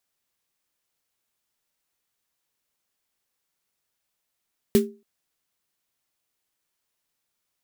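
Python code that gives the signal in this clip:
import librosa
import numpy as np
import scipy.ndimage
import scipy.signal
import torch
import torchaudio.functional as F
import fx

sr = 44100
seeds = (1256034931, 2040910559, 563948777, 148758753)

y = fx.drum_snare(sr, seeds[0], length_s=0.28, hz=220.0, second_hz=400.0, noise_db=-10.5, noise_from_hz=1200.0, decay_s=0.31, noise_decay_s=0.16)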